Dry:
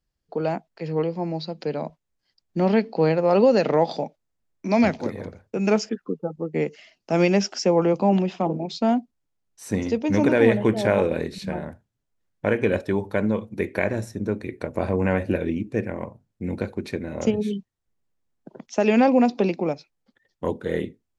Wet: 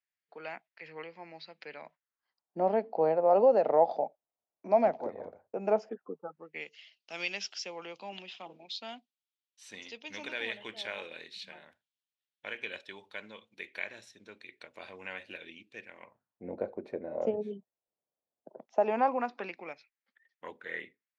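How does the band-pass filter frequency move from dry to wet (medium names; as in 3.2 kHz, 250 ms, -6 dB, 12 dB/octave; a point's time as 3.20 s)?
band-pass filter, Q 2.5
1.84 s 2.1 kHz
2.59 s 700 Hz
6.06 s 700 Hz
6.66 s 3.3 kHz
15.96 s 3.3 kHz
16.48 s 620 Hz
18.63 s 620 Hz
19.61 s 2 kHz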